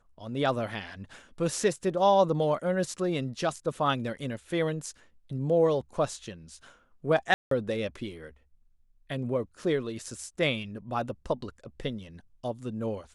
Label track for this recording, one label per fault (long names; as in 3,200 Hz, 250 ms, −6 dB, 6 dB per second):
7.340000	7.510000	drop-out 173 ms